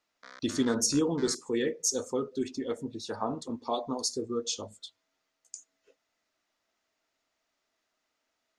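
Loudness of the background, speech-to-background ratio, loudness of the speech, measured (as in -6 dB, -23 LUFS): -49.5 LUFS, 18.5 dB, -31.0 LUFS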